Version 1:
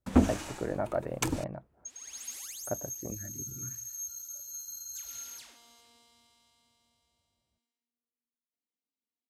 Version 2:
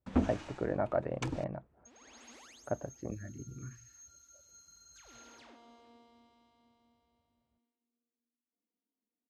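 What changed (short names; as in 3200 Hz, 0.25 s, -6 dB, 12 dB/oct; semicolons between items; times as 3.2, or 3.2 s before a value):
first sound -6.5 dB; second sound: add tilt shelf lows +10 dB, about 1400 Hz; master: add LPF 4400 Hz 12 dB/oct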